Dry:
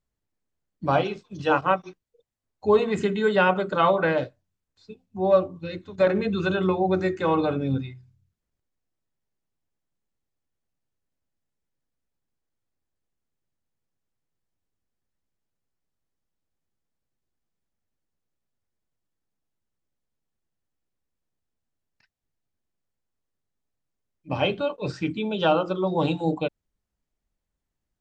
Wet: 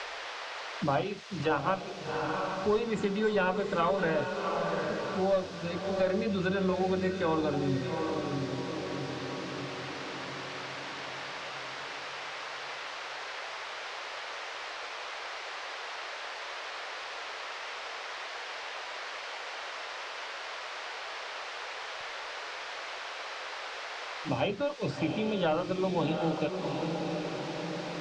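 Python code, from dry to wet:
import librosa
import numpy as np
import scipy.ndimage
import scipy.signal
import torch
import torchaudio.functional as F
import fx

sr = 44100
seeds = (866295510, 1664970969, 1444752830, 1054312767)

p1 = fx.diode_clip(x, sr, knee_db=-7.5)
p2 = fx.dmg_noise_band(p1, sr, seeds[0], low_hz=460.0, high_hz=5300.0, level_db=-46.0)
p3 = p2 + fx.echo_diffused(p2, sr, ms=741, feedback_pct=40, wet_db=-7.5, dry=0)
p4 = fx.band_squash(p3, sr, depth_pct=70)
y = F.gain(torch.from_numpy(p4), -4.0).numpy()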